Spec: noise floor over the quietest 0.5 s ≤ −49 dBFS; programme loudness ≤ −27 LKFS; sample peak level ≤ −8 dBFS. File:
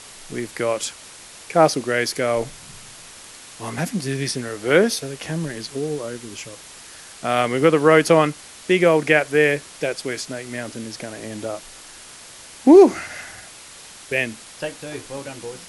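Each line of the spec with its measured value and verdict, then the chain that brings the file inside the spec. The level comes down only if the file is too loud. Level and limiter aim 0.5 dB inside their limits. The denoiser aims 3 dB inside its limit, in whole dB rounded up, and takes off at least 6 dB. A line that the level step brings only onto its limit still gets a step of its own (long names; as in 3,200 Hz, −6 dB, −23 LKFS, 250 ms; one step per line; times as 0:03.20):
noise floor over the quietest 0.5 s −42 dBFS: out of spec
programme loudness −20.0 LKFS: out of spec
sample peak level −2.0 dBFS: out of spec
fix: level −7.5 dB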